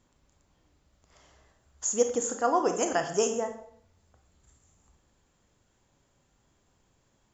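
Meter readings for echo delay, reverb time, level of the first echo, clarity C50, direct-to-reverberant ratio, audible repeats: no echo, 0.60 s, no echo, 8.5 dB, 5.5 dB, no echo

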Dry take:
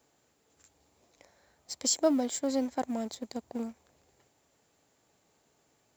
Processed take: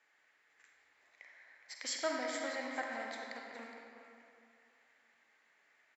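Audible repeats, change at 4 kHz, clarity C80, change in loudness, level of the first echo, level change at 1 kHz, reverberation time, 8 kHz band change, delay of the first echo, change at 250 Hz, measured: 1, -6.0 dB, 1.5 dB, -8.5 dB, -12.0 dB, -3.5 dB, 2.4 s, -12.0 dB, 416 ms, -16.0 dB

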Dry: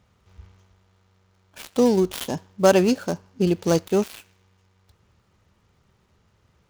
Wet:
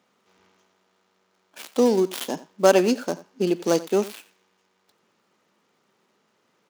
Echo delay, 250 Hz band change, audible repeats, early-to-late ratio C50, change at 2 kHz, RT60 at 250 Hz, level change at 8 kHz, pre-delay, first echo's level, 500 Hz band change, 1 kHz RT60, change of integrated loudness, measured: 88 ms, -2.0 dB, 1, no reverb, 0.0 dB, no reverb, 0.0 dB, no reverb, -18.0 dB, 0.0 dB, no reverb, -1.0 dB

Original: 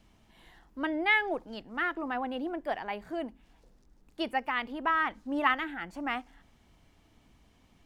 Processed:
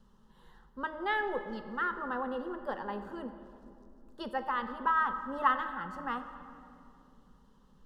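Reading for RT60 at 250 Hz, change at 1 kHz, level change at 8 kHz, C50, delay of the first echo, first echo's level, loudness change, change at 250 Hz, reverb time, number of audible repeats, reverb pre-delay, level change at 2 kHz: 3.2 s, +0.5 dB, no reading, 9.5 dB, no echo, no echo, -2.5 dB, -5.5 dB, 2.7 s, no echo, 3 ms, -5.5 dB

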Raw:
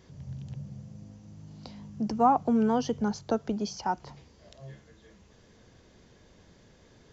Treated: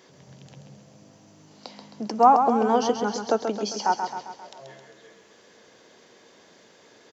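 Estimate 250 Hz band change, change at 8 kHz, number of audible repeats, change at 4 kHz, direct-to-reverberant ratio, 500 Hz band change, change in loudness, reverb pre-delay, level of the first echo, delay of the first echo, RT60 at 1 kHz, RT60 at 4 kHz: -0.5 dB, no reading, 6, +8.0 dB, no reverb, +7.0 dB, +6.0 dB, no reverb, -7.0 dB, 133 ms, no reverb, no reverb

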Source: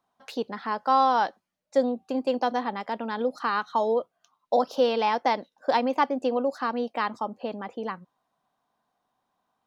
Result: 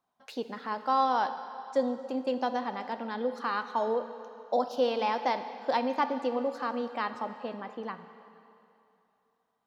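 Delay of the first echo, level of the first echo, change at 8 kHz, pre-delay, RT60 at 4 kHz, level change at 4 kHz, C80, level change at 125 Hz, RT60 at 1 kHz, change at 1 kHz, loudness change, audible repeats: no echo, no echo, no reading, 7 ms, 2.6 s, -4.5 dB, 11.0 dB, no reading, 2.8 s, -4.5 dB, -4.5 dB, no echo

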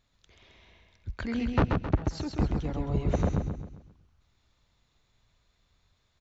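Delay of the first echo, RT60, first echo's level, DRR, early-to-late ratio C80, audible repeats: 133 ms, no reverb, -4.0 dB, no reverb, no reverb, 5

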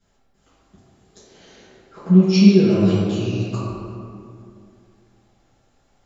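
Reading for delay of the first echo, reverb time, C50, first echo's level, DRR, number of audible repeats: no echo, 2.4 s, -3.0 dB, no echo, -14.5 dB, no echo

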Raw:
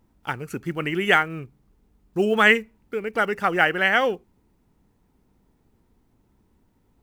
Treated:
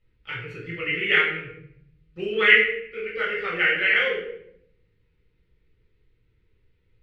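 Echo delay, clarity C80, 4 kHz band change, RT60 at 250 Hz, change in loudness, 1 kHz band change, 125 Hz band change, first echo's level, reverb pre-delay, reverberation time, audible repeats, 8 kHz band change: no echo, 7.0 dB, +1.5 dB, 1.2 s, +0.5 dB, -9.5 dB, -6.5 dB, no echo, 4 ms, 0.70 s, no echo, under -15 dB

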